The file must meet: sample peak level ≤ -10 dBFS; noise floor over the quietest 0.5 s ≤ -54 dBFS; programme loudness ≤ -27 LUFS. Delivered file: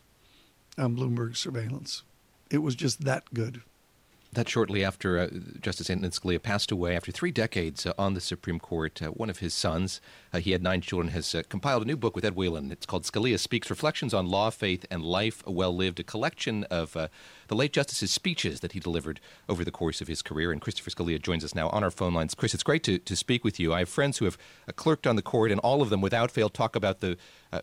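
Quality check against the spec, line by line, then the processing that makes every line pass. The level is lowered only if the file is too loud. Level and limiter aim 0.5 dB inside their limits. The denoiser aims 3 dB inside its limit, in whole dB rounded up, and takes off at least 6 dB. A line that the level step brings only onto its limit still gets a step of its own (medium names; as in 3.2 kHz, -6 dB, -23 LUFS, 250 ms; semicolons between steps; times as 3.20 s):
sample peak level -13.0 dBFS: pass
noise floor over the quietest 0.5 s -63 dBFS: pass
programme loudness -29.5 LUFS: pass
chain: none needed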